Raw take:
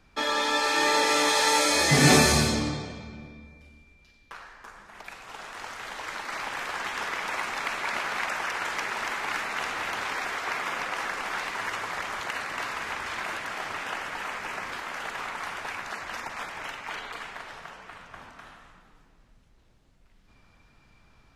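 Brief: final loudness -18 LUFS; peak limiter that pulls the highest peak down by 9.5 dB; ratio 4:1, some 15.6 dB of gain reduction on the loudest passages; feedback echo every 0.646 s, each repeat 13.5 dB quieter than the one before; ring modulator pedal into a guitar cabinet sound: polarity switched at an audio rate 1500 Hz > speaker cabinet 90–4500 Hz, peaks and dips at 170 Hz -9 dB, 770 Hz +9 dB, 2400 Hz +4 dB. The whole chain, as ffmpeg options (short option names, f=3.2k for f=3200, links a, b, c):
-af "acompressor=threshold=-33dB:ratio=4,alimiter=level_in=5.5dB:limit=-24dB:level=0:latency=1,volume=-5.5dB,aecho=1:1:646|1292:0.211|0.0444,aeval=exprs='val(0)*sgn(sin(2*PI*1500*n/s))':c=same,highpass=90,equalizer=f=170:t=q:w=4:g=-9,equalizer=f=770:t=q:w=4:g=9,equalizer=f=2.4k:t=q:w=4:g=4,lowpass=f=4.5k:w=0.5412,lowpass=f=4.5k:w=1.3066,volume=19.5dB"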